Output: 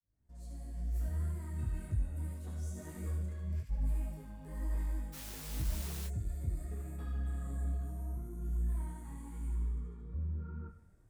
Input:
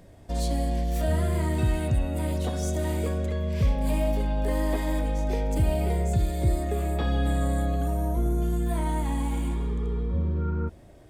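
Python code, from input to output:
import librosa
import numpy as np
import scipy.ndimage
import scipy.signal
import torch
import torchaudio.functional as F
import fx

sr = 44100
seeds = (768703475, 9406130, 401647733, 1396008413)

p1 = fx.fade_in_head(x, sr, length_s=1.0)
p2 = fx.tone_stack(p1, sr, knobs='6-0-2')
p3 = fx.rev_schroeder(p2, sr, rt60_s=0.91, comb_ms=28, drr_db=12.0)
p4 = fx.over_compress(p3, sr, threshold_db=-41.0, ratio=-0.5, at=(2.76, 3.69), fade=0.02)
p5 = fx.curve_eq(p4, sr, hz=(320.0, 900.0, 1400.0, 3300.0, 7700.0), db=(0, 5, 3, -14, -4))
p6 = p5 + fx.echo_wet_highpass(p5, sr, ms=74, feedback_pct=54, hz=1900.0, wet_db=-3.5, dry=0)
p7 = fx.quant_dither(p6, sr, seeds[0], bits=8, dither='triangular', at=(5.12, 6.06), fade=0.02)
p8 = 10.0 ** (-30.5 / 20.0) * np.tanh(p7 / 10.0 ** (-30.5 / 20.0))
p9 = fx.detune_double(p8, sr, cents=36)
y = p9 * 10.0 ** (6.0 / 20.0)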